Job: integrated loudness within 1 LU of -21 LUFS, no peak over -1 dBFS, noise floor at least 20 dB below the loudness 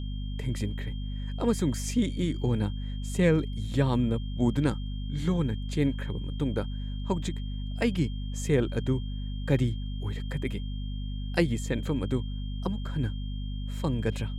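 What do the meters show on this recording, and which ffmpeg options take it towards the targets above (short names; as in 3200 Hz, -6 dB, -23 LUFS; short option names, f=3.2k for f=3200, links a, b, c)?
hum 50 Hz; harmonics up to 250 Hz; hum level -31 dBFS; steady tone 3200 Hz; tone level -49 dBFS; loudness -30.0 LUFS; peak -10.5 dBFS; loudness target -21.0 LUFS
-> -af "bandreject=f=50:t=h:w=4,bandreject=f=100:t=h:w=4,bandreject=f=150:t=h:w=4,bandreject=f=200:t=h:w=4,bandreject=f=250:t=h:w=4"
-af "bandreject=f=3.2k:w=30"
-af "volume=9dB"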